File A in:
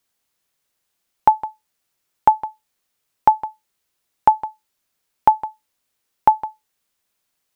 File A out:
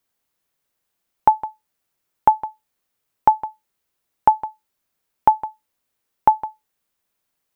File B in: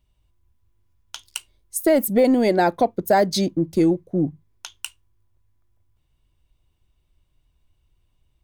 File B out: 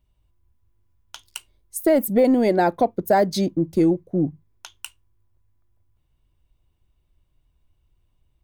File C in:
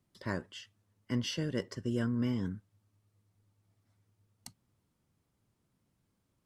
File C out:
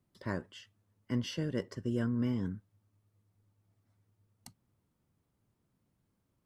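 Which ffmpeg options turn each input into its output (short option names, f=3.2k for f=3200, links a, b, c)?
-af "equalizer=f=5.5k:t=o:w=2.9:g=-5"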